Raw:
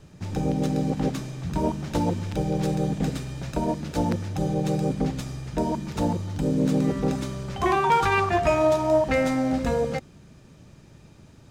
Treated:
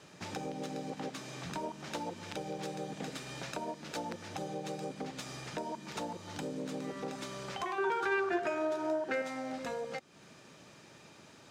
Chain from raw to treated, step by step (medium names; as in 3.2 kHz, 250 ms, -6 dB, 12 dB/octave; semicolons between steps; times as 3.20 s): frequency weighting A; compression 4:1, threshold -41 dBFS, peak gain reduction 19.5 dB; 7.78–9.22 s: small resonant body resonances 370/1500 Hz, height 16 dB, ringing for 30 ms; trim +2.5 dB